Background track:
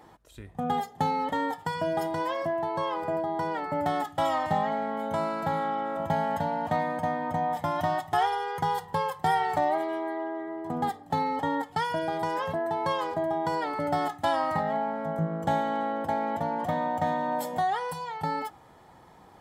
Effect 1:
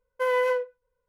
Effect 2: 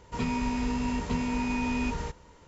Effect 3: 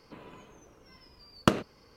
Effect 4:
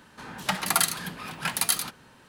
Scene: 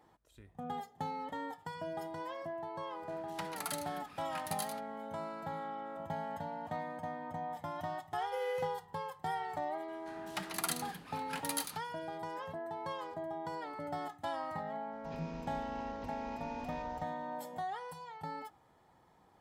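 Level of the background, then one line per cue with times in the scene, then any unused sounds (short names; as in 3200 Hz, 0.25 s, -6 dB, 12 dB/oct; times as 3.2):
background track -12.5 dB
2.9 add 4 -17.5 dB
8.12 add 1 -10 dB + Butterworth band-stop 1100 Hz, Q 0.65
9.88 add 4 -13 dB
14.92 add 2 -18 dB + CVSD 32 kbps
not used: 3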